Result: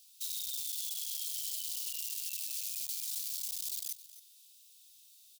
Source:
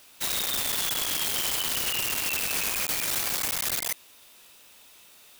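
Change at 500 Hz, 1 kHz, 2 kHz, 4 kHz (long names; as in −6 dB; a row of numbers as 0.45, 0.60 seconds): below −40 dB, below −40 dB, −25.0 dB, −12.5 dB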